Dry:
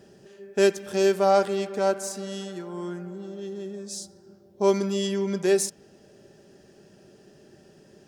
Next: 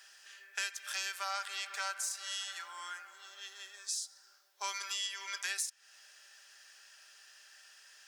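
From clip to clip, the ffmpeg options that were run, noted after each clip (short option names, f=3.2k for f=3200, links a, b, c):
-af "highpass=f=1.3k:w=0.5412,highpass=f=1.3k:w=1.3066,acompressor=threshold=-41dB:ratio=6,volume=6.5dB"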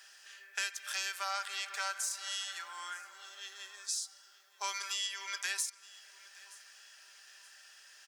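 -af "aecho=1:1:923|1846|2769:0.0891|0.0348|0.0136,volume=1dB"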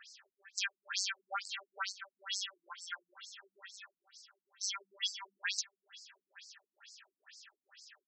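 -af "afftfilt=real='re*between(b*sr/1024,210*pow(6000/210,0.5+0.5*sin(2*PI*2.2*pts/sr))/1.41,210*pow(6000/210,0.5+0.5*sin(2*PI*2.2*pts/sr))*1.41)':imag='im*between(b*sr/1024,210*pow(6000/210,0.5+0.5*sin(2*PI*2.2*pts/sr))/1.41,210*pow(6000/210,0.5+0.5*sin(2*PI*2.2*pts/sr))*1.41)':win_size=1024:overlap=0.75,volume=4.5dB"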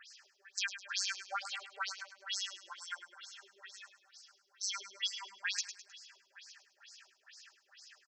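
-af "aecho=1:1:104|208|312|416:0.282|0.116|0.0474|0.0194"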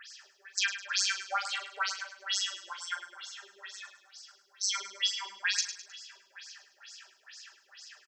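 -filter_complex "[0:a]asplit=2[a][b];[b]adelay=40,volume=-9.5dB[c];[a][c]amix=inputs=2:normalize=0,volume=6.5dB"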